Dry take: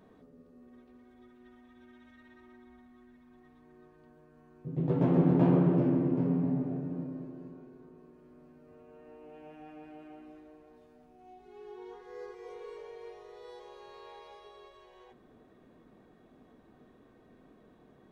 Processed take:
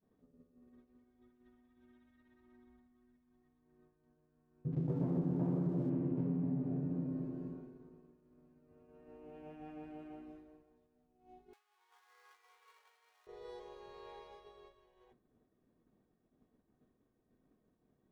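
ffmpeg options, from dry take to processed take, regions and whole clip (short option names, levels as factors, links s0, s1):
-filter_complex "[0:a]asettb=1/sr,asplit=3[s0][s1][s2];[s0]atrim=end=4.724[s3];[s1]atrim=start=4.72:end=5.9,asetpts=PTS-STARTPTS,afade=t=in:d=0.004:c=qsin,afade=t=out:st=1.176:d=0.004:c=qsin,lowpass=1600,aeval=exprs='sgn(val(0))*max(abs(val(0))-0.00266,0)':c=same[s4];[s2]atrim=start=5.896[s5];[s3][s4]acrossfade=d=0.004:c1=hsin:c2=qsin[s6];[s6][s5]acrossfade=d=0.004:c1=qsin:c2=hsin,asettb=1/sr,asplit=3[s7][s8][s9];[s7]atrim=end=11.534[s10];[s8]atrim=start=11.53:end=13.27,asetpts=PTS-STARTPTS,afade=t=in:d=0.004:c=qsin,afade=t=out:st=1.736:d=0.004:c=qsin,aeval=exprs='val(0)+0.5*0.00316*sgn(val(0))':c=same,highpass=f=980:w=0.5412,highpass=f=980:w=1.3066[s11];[s9]atrim=start=13.266[s12];[s10][s11]acrossfade=d=0.004:c1=hsin:c2=qsin[s13];[s13][s12]acrossfade=d=0.004:c1=qsin:c2=hsin,agate=range=0.0224:threshold=0.00447:ratio=3:detection=peak,lowshelf=f=330:g=8.5,acompressor=threshold=0.0282:ratio=4,volume=0.708"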